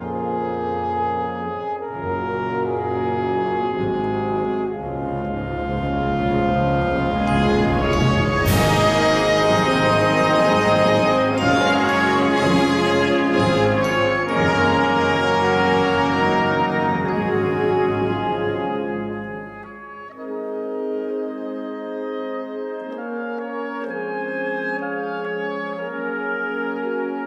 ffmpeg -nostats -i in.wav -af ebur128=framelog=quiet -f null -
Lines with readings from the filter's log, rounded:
Integrated loudness:
  I:         -20.2 LUFS
  Threshold: -30.4 LUFS
Loudness range:
  LRA:        10.8 LU
  Threshold: -40.1 LUFS
  LRA low:   -27.5 LUFS
  LRA high:  -16.7 LUFS